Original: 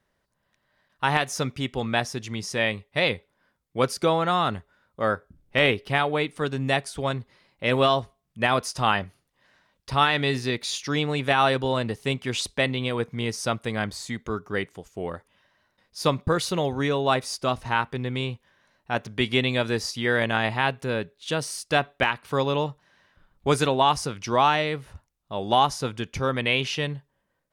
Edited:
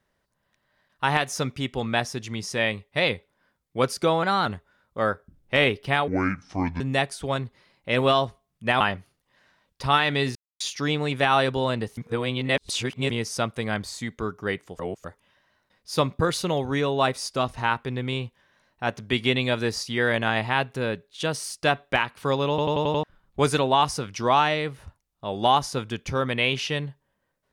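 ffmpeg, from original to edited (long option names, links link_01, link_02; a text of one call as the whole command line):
ffmpeg -i in.wav -filter_complex "[0:a]asplit=18[link_01][link_02][link_03][link_04][link_05][link_06][link_07][link_08][link_09][link_10][link_11][link_12][link_13][link_14][link_15][link_16][link_17][link_18];[link_01]atrim=end=4.234[link_19];[link_02]atrim=start=4.23:end=4.48,asetpts=PTS-STARTPTS,asetrate=48510,aresample=44100[link_20];[link_03]atrim=start=4.476:end=6.104[link_21];[link_04]atrim=start=6.1:end=6.55,asetpts=PTS-STARTPTS,asetrate=27342,aresample=44100,atrim=end_sample=32008,asetpts=PTS-STARTPTS[link_22];[link_05]atrim=start=6.546:end=8.552[link_23];[link_06]atrim=start=8.878:end=10.43,asetpts=PTS-STARTPTS,afade=type=out:start_time=1.548:duration=0.004:curve=hsin[link_24];[link_07]atrim=start=10.43:end=10.68,asetpts=PTS-STARTPTS,volume=0[link_25];[link_08]atrim=start=10.68:end=12.052,asetpts=PTS-STARTPTS,afade=type=in:duration=0.004:curve=hsin[link_26];[link_09]atrim=start=12.048:end=13.182,asetpts=PTS-STARTPTS,areverse[link_27];[link_10]atrim=start=13.178:end=14.872[link_28];[link_11]atrim=start=14.868:end=15.122,asetpts=PTS-STARTPTS,areverse[link_29];[link_12]atrim=start=15.118:end=22.662[link_30];[link_13]atrim=start=22.568:end=22.662[link_31];[link_14]atrim=start=22.568:end=22.662[link_32];[link_15]atrim=start=22.568:end=22.662[link_33];[link_16]atrim=start=22.568:end=22.662[link_34];[link_17]atrim=start=22.568:end=22.662[link_35];[link_18]atrim=start=23.108[link_36];[link_19][link_20]acrossfade=duration=0.004:curve1=hsin:curve2=hsin[link_37];[link_37][link_21]acrossfade=duration=0.004:curve1=hsin:curve2=hsin[link_38];[link_38][link_22]acrossfade=duration=0.004:curve1=hsin:curve2=hsin[link_39];[link_39][link_23]acrossfade=duration=0.004:curve1=hsin:curve2=hsin[link_40];[link_24][link_25][link_26]concat=n=3:v=0:a=1[link_41];[link_40][link_41]acrossfade=duration=0.004:curve1=hsin:curve2=hsin[link_42];[link_42][link_27]acrossfade=duration=0.004:curve1=hsin:curve2=hsin[link_43];[link_43][link_28]acrossfade=duration=0.004:curve1=hsin:curve2=hsin[link_44];[link_44][link_29]acrossfade=duration=0.004:curve1=hsin:curve2=hsin[link_45];[link_45][link_30]acrossfade=duration=0.004:curve1=hsin:curve2=hsin[link_46];[link_46][link_31]acrossfade=duration=0.004:curve1=hsin:curve2=hsin[link_47];[link_47][link_32]acrossfade=duration=0.004:curve1=hsin:curve2=hsin[link_48];[link_48][link_33]acrossfade=duration=0.004:curve1=hsin:curve2=hsin[link_49];[link_49][link_34]acrossfade=duration=0.004:curve1=hsin:curve2=hsin[link_50];[link_50][link_35]acrossfade=duration=0.004:curve1=hsin:curve2=hsin[link_51];[link_51][link_36]acrossfade=duration=0.004:curve1=hsin:curve2=hsin" out.wav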